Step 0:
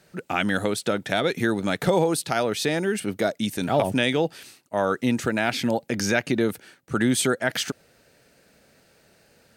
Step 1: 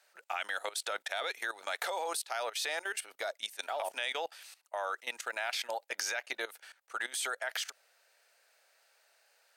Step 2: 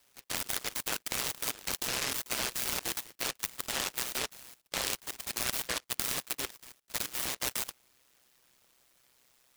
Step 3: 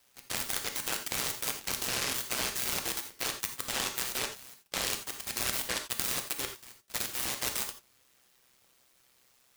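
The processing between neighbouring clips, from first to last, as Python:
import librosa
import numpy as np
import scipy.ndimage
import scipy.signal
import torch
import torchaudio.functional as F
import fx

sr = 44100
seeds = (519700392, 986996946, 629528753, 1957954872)

y1 = scipy.signal.sosfilt(scipy.signal.butter(4, 670.0, 'highpass', fs=sr, output='sos'), x)
y1 = fx.level_steps(y1, sr, step_db=17)
y1 = F.gain(torch.from_numpy(y1), -1.0).numpy()
y2 = y1 * np.sin(2.0 * np.pi * 64.0 * np.arange(len(y1)) / sr)
y2 = fx.noise_mod_delay(y2, sr, seeds[0], noise_hz=2100.0, depth_ms=0.48)
y2 = F.gain(torch.from_numpy(y2), 5.0).numpy()
y3 = fx.rev_gated(y2, sr, seeds[1], gate_ms=110, shape='flat', drr_db=5.5)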